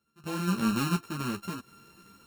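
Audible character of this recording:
a buzz of ramps at a fixed pitch in blocks of 32 samples
sample-and-hold tremolo 4.2 Hz, depth 95%
a shimmering, thickened sound

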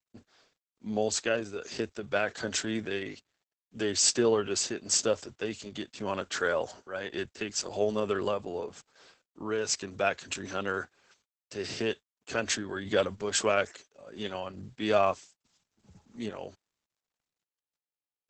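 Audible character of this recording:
sample-and-hold tremolo 3.5 Hz
a quantiser's noise floor 12 bits, dither none
Opus

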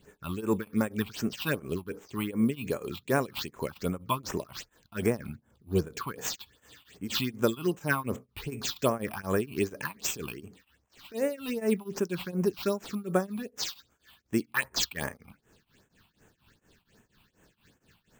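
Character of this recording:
aliases and images of a low sample rate 11,000 Hz, jitter 0%
phaser sweep stages 6, 2.6 Hz, lowest notch 440–4,400 Hz
tremolo triangle 4.2 Hz, depth 95%

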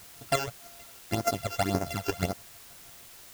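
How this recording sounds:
a buzz of ramps at a fixed pitch in blocks of 64 samples
chopped level 6.3 Hz, depth 60%, duty 25%
phaser sweep stages 12, 1.8 Hz, lowest notch 200–3,700 Hz
a quantiser's noise floor 10 bits, dither triangular

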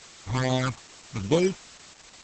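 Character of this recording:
aliases and images of a low sample rate 2,700 Hz, jitter 0%
phaser sweep stages 12, 2.4 Hz, lowest notch 480–1,700 Hz
a quantiser's noise floor 8 bits, dither triangular
Opus

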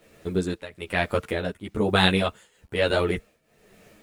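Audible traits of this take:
a quantiser's noise floor 10 bits, dither none
tremolo triangle 1.1 Hz, depth 90%
a shimmering, thickened sound

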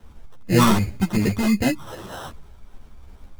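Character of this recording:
phaser sweep stages 6, 2.6 Hz, lowest notch 490–1,200 Hz
aliases and images of a low sample rate 2,300 Hz, jitter 0%
a shimmering, thickened sound

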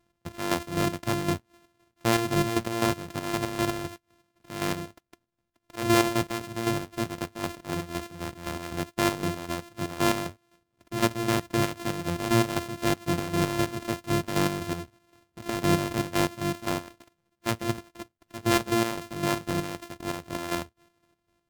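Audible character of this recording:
a buzz of ramps at a fixed pitch in blocks of 128 samples
chopped level 3.9 Hz, depth 60%, duty 45%
Ogg Vorbis

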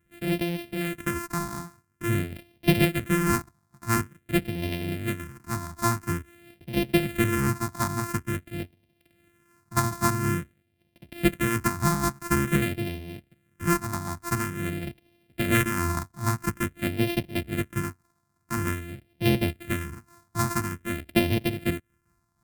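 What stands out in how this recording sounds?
a buzz of ramps at a fixed pitch in blocks of 128 samples
phaser sweep stages 4, 0.48 Hz, lowest notch 480–1,200 Hz
amplitude modulation by smooth noise

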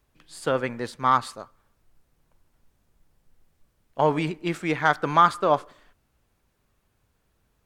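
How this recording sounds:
background noise floor −71 dBFS
spectral slope −4.0 dB per octave

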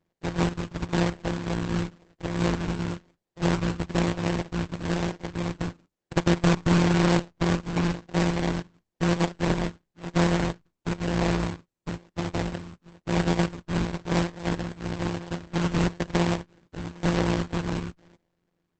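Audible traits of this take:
a buzz of ramps at a fixed pitch in blocks of 256 samples
phaser sweep stages 12, 1 Hz, lowest notch 650–1,600 Hz
aliases and images of a low sample rate 1,300 Hz, jitter 20%
Opus

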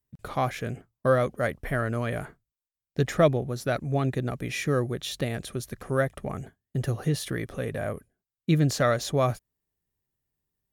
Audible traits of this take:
background noise floor −92 dBFS
spectral slope −6.0 dB per octave

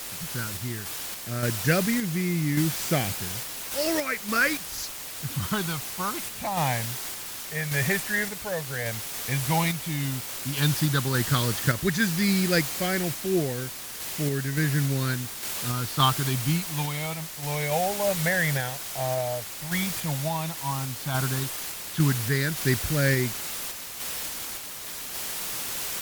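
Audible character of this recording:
phaser sweep stages 6, 0.093 Hz, lowest notch 310–1,000 Hz
a quantiser's noise floor 6 bits, dither triangular
sample-and-hold tremolo
MP3

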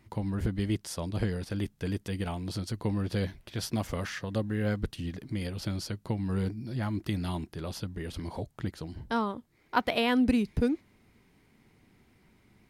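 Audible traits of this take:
background noise floor −65 dBFS
spectral slope −5.5 dB per octave

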